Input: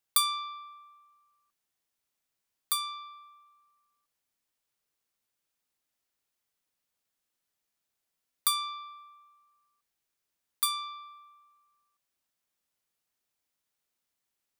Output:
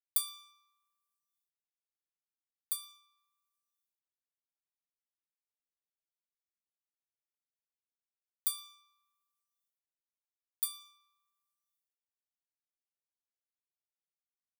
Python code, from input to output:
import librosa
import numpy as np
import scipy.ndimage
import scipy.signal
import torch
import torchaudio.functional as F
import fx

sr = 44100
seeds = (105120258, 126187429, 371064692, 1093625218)

y = fx.law_mismatch(x, sr, coded='A')
y = np.diff(y, prepend=0.0)
y = fx.rev_schroeder(y, sr, rt60_s=0.46, comb_ms=26, drr_db=17.5)
y = y * 10.0 ** (-7.0 / 20.0)